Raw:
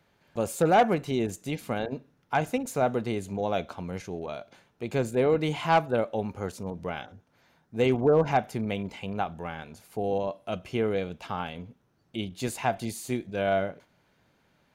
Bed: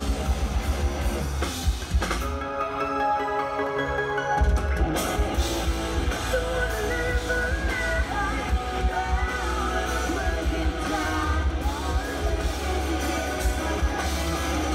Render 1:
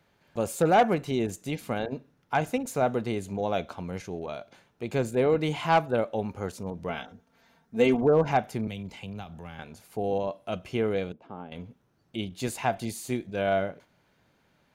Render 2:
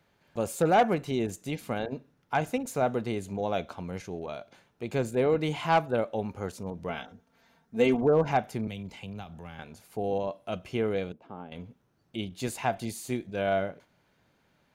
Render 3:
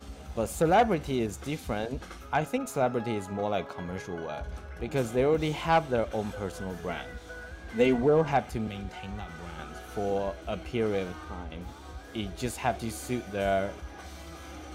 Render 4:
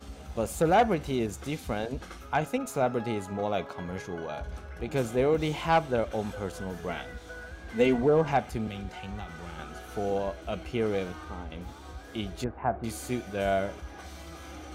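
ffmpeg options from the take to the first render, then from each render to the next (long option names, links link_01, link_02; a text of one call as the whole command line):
ffmpeg -i in.wav -filter_complex "[0:a]asettb=1/sr,asplit=3[link_01][link_02][link_03];[link_01]atrim=end=6.894[link_04];[link_02]atrim=start=6.89:end=8.03,asetpts=PTS-STARTPTS,afade=type=in:duration=0.004:curve=qsin,afade=type=out:start_time=1.136:duration=0.004:curve=qsin,aecho=1:1:4.4:0.65,atrim=end_sample=50274[link_05];[link_03]atrim=start=8.026[link_06];[link_04][link_05]acrossfade=duration=0.004:curve1=hsin:curve2=qsin[link_07];[link_07][link_06]acrossfade=duration=0.004:curve1=qsin:curve2=hsin,asettb=1/sr,asplit=3[link_08][link_09][link_10];[link_08]atrim=end=8.674[link_11];[link_09]atrim=start=8.67:end=9.59,asetpts=PTS-STARTPTS,afade=type=in:duration=0.004:curve=qsin,afade=type=out:start_time=0.916:duration=0.004:curve=qsin,acrossover=split=180|3000[link_12][link_13][link_14];[link_13]acompressor=threshold=-46dB:ratio=2.5:attack=3.2:release=140:knee=2.83:detection=peak[link_15];[link_12][link_15][link_14]amix=inputs=3:normalize=0[link_16];[link_10]atrim=start=9.586[link_17];[link_11][link_16]acrossfade=duration=0.004:curve1=hsin:curve2=qsin[link_18];[link_18][link_17]acrossfade=duration=0.004:curve1=qsin:curve2=hsin,asettb=1/sr,asplit=3[link_19][link_20][link_21];[link_19]atrim=end=11.124[link_22];[link_20]atrim=start=11.12:end=11.52,asetpts=PTS-STARTPTS,afade=type=in:duration=0.004:curve=qsin,afade=type=out:start_time=0.396:duration=0.004:curve=qsin,bandpass=frequency=320:width_type=q:width=1.3[link_23];[link_21]atrim=start=11.516[link_24];[link_22][link_23]acrossfade=duration=0.004:curve1=hsin:curve2=qsin[link_25];[link_25][link_24]acrossfade=duration=0.004:curve1=qsin:curve2=hsin" out.wav
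ffmpeg -i in.wav -af "volume=-1.5dB" out.wav
ffmpeg -i in.wav -i bed.wav -filter_complex "[1:a]volume=-17.5dB[link_01];[0:a][link_01]amix=inputs=2:normalize=0" out.wav
ffmpeg -i in.wav -filter_complex "[0:a]asettb=1/sr,asplit=3[link_01][link_02][link_03];[link_01]atrim=end=12.444[link_04];[link_02]atrim=start=12.44:end=12.84,asetpts=PTS-STARTPTS,afade=type=in:duration=0.004:curve=qsin,afade=type=out:start_time=0.396:duration=0.004:curve=qsin,lowpass=frequency=1500:width=0.5412,lowpass=frequency=1500:width=1.3066[link_05];[link_03]atrim=start=12.836[link_06];[link_04][link_05]acrossfade=duration=0.004:curve1=hsin:curve2=qsin[link_07];[link_07][link_06]acrossfade=duration=0.004:curve1=qsin:curve2=hsin" out.wav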